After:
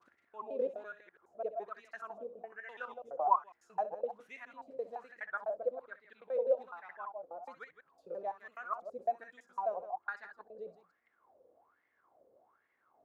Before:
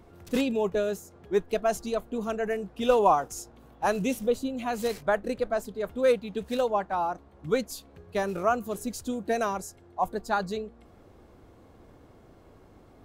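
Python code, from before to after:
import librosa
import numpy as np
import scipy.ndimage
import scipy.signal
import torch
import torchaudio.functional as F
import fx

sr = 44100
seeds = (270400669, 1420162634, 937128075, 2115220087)

y = fx.block_reorder(x, sr, ms=84.0, group=4)
y = fx.echo_multitap(y, sr, ms=(64, 164), db=(-12.5, -10.5))
y = fx.wah_lfo(y, sr, hz=1.2, low_hz=510.0, high_hz=2000.0, q=11.0)
y = y * 10.0 ** (1.0 / 20.0)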